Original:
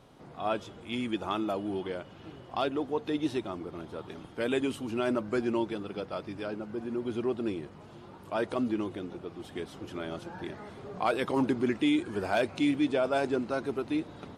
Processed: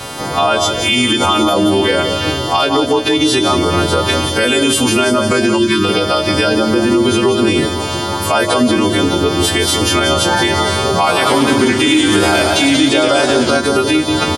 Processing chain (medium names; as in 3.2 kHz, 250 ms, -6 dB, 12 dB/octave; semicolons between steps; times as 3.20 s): partials quantised in pitch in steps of 2 st; bass shelf 450 Hz -5 dB; compression 6:1, threshold -38 dBFS, peak gain reduction 14.5 dB; peaking EQ 84 Hz +11 dB 0.39 oct; feedback delay 177 ms, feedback 38%, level -9 dB; 5.58–5.85 s: spectral selection erased 430–910 Hz; de-hum 56.94 Hz, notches 11; loudness maximiser +34.5 dB; 10.97–13.57 s: modulated delay 116 ms, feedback 62%, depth 116 cents, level -8 dB; trim -3 dB